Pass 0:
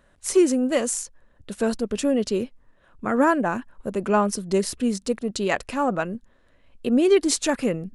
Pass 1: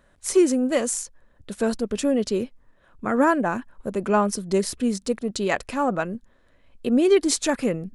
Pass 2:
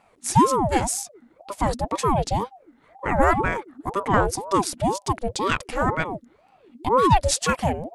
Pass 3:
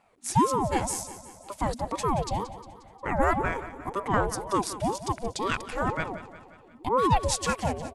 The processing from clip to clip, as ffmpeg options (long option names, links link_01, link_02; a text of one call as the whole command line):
ffmpeg -i in.wav -af "bandreject=frequency=2800:width=22" out.wav
ffmpeg -i in.wav -af "aeval=exprs='val(0)*sin(2*PI*520*n/s+520*0.55/2*sin(2*PI*2*n/s))':channel_layout=same,volume=3.5dB" out.wav
ffmpeg -i in.wav -af "aecho=1:1:178|356|534|712|890|1068:0.2|0.11|0.0604|0.0332|0.0183|0.01,volume=-5.5dB" out.wav